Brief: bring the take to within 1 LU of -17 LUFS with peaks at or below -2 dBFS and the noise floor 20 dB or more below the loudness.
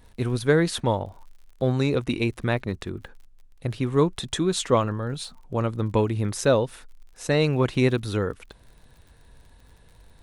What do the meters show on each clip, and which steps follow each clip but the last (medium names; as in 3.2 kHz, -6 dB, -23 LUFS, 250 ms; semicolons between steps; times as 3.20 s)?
tick rate 52 per s; loudness -25.0 LUFS; peak level -7.0 dBFS; loudness target -17.0 LUFS
-> de-click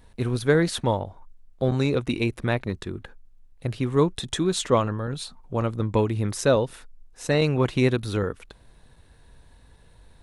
tick rate 0.20 per s; loudness -25.0 LUFS; peak level -7.0 dBFS; loudness target -17.0 LUFS
-> trim +8 dB; peak limiter -2 dBFS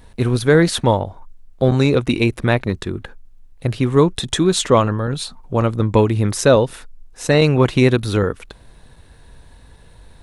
loudness -17.5 LUFS; peak level -2.0 dBFS; noise floor -46 dBFS